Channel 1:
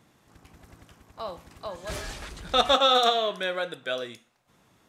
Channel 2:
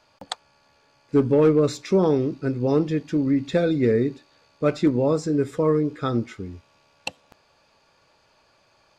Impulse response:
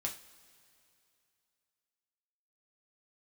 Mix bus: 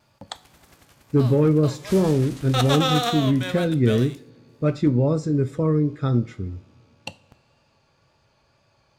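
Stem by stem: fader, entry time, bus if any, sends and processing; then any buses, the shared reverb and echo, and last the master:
-2.5 dB, 0.00 s, no send, formants flattened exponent 0.6; gate -58 dBFS, range -8 dB
-7.0 dB, 0.00 s, send -7.5 dB, peaking EQ 92 Hz +13 dB 2.4 oct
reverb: on, pre-delay 3 ms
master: vibrato 2 Hz 28 cents

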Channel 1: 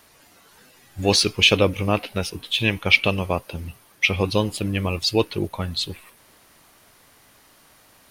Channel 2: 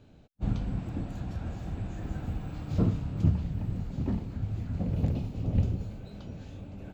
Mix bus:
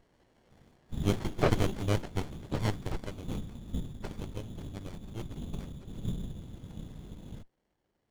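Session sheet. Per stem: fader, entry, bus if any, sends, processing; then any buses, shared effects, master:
2.65 s -6.5 dB -> 3.03 s -18 dB, 0.00 s, no send, hum notches 60/120/180/240/300/360/420/480 Hz
+0.5 dB, 0.50 s, no send, Shepard-style phaser falling 0.37 Hz; auto duck -9 dB, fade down 1.40 s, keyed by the first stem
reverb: none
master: frequency inversion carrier 3.6 kHz; sliding maximum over 33 samples

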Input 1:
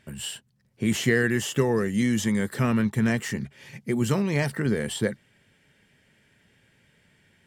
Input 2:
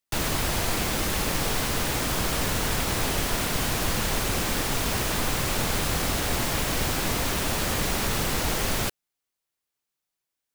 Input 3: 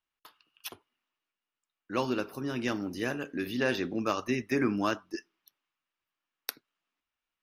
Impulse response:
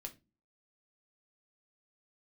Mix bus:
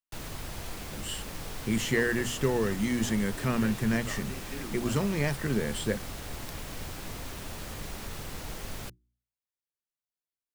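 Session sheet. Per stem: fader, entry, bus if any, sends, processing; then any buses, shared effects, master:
-4.0 dB, 0.85 s, no send, none
-15.0 dB, 0.00 s, no send, bass shelf 200 Hz +6 dB; hum notches 60/120/180/240/300/360 Hz
-14.0 dB, 0.00 s, no send, none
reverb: none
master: hum notches 60/120/180/240 Hz

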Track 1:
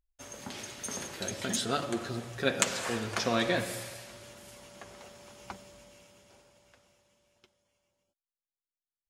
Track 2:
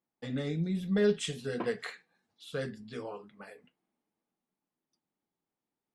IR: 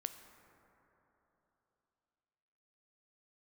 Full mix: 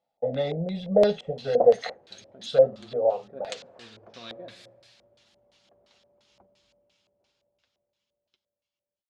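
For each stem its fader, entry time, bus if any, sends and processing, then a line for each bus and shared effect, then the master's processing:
-18.0 dB, 0.90 s, no send, treble shelf 3.3 kHz +11.5 dB
0.0 dB, 0.00 s, no send, high-order bell 650 Hz +14 dB 1.1 oct; comb 1.5 ms, depth 39%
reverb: none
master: LFO low-pass square 2.9 Hz 600–4000 Hz

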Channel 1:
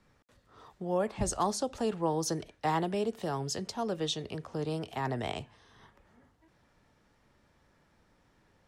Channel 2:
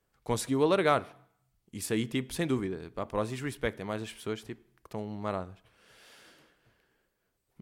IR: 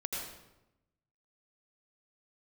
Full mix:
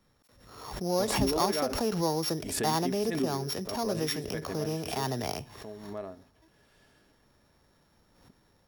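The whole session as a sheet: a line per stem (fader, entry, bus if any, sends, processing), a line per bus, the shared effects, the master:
-2.0 dB, 0.00 s, no send, sorted samples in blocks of 8 samples; level rider gain up to 3 dB
-13.0 dB, 0.70 s, no send, small resonant body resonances 270/400/630/1700 Hz, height 12 dB, ringing for 65 ms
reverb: none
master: swell ahead of each attack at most 57 dB/s

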